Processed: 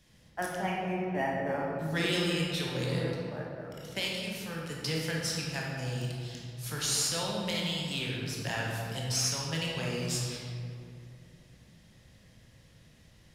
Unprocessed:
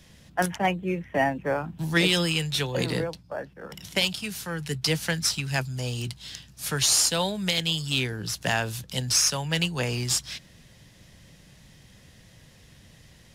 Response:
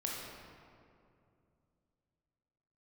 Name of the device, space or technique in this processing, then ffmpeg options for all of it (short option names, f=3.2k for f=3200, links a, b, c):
stairwell: -filter_complex "[1:a]atrim=start_sample=2205[a];[0:a][a]afir=irnorm=-1:irlink=0,volume=-8.5dB"